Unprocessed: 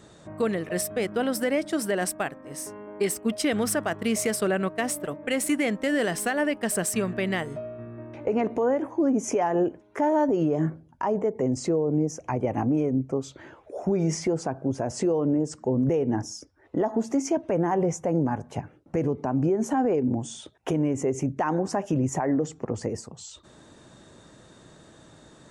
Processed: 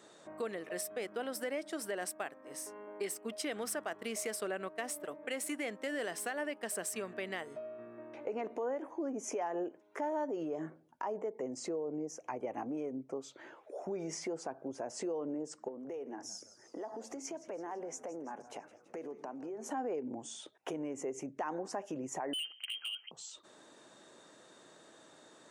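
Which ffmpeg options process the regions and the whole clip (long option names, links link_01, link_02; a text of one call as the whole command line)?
ffmpeg -i in.wav -filter_complex "[0:a]asettb=1/sr,asplit=3[link_01][link_02][link_03];[link_01]atrim=end=15.684[link_04];[link_02]atrim=start=15.68:end=19.7,asetpts=PTS-STARTPTS,afade=type=in:duration=0.004:curve=qsin,afade=type=out:start_time=4.016:duration=0.004:curve=qsin,highpass=240,acompressor=threshold=-30dB:ratio=3:attack=3.2:release=140:knee=1:detection=peak,asplit=6[link_05][link_06][link_07][link_08][link_09][link_10];[link_06]adelay=166,afreqshift=-120,volume=-16.5dB[link_11];[link_07]adelay=332,afreqshift=-240,volume=-21.2dB[link_12];[link_08]adelay=498,afreqshift=-360,volume=-26dB[link_13];[link_09]adelay=664,afreqshift=-480,volume=-30.7dB[link_14];[link_10]adelay=830,afreqshift=-600,volume=-35.4dB[link_15];[link_05][link_11][link_12][link_13][link_14][link_15]amix=inputs=6:normalize=0,atrim=end_sample=177282[link_16];[link_03]atrim=start=19.696[link_17];[link_04][link_16]acrossfade=duration=0.004:curve1=hsin:curve2=qsin[link_18];[link_18][link_17]acrossfade=duration=0.004:curve1=qsin:curve2=hsin,asettb=1/sr,asplit=3[link_19][link_20][link_21];[link_19]atrim=end=22.334[link_22];[link_20]atrim=start=22.33:end=23.11,asetpts=PTS-STARTPTS,afade=type=in:duration=0.004:curve=qsin,afade=type=out:start_time=0.776:duration=0.004:curve=qsin,lowpass=frequency=2800:width_type=q:width=0.5098,lowpass=frequency=2800:width_type=q:width=0.6013,lowpass=frequency=2800:width_type=q:width=0.9,lowpass=frequency=2800:width_type=q:width=2.563,afreqshift=-3300,volume=25.5dB,asoftclip=hard,volume=-25.5dB[link_23];[link_21]atrim=start=23.106[link_24];[link_22][link_23]acrossfade=duration=0.004:curve1=hsin:curve2=qsin[link_25];[link_25][link_24]acrossfade=duration=0.004:curve1=qsin:curve2=hsin,highpass=350,acompressor=threshold=-41dB:ratio=1.5,volume=-4.5dB" out.wav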